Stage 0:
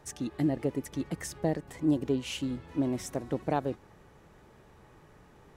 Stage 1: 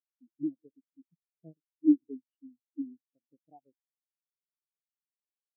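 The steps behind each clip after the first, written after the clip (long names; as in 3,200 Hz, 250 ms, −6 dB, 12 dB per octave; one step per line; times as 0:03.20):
on a send at −17.5 dB: convolution reverb RT60 1.4 s, pre-delay 3 ms
on the sum: every bin expanded away from the loudest bin 4 to 1
level +2.5 dB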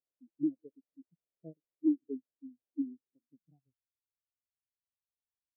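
downward compressor 10 to 1, threshold −27 dBFS, peak gain reduction 11.5 dB
low-pass filter sweep 550 Hz → 100 Hz, 0:02.93–0:03.73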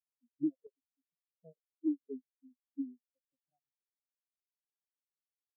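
noise reduction from a noise print of the clip's start 28 dB
sample-and-hold tremolo 1.5 Hz
level −1.5 dB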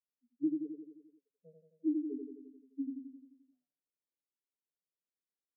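elliptic band-pass filter 170–540 Hz
on a send: repeating echo 87 ms, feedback 59%, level −4 dB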